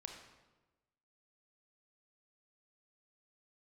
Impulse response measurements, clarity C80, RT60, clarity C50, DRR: 6.5 dB, 1.2 s, 4.5 dB, 2.5 dB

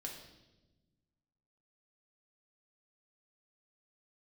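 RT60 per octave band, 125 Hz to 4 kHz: 2.0, 1.8, 1.3, 0.85, 0.90, 1.0 s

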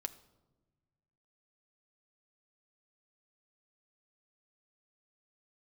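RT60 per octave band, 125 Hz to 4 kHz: 2.1, 1.7, 1.3, 1.0, 0.70, 0.65 s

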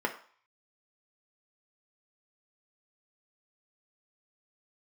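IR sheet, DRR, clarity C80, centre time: 2.5 dB, 15.5 dB, 12 ms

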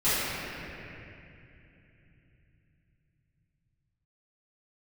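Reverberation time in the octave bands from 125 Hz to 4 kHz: 6.3, 4.5, 3.1, 2.5, 3.3, 2.3 s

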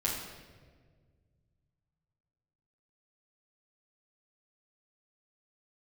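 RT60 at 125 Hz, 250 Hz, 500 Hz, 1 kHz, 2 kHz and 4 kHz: 3.2, 2.3, 1.9, 1.3, 1.3, 1.1 s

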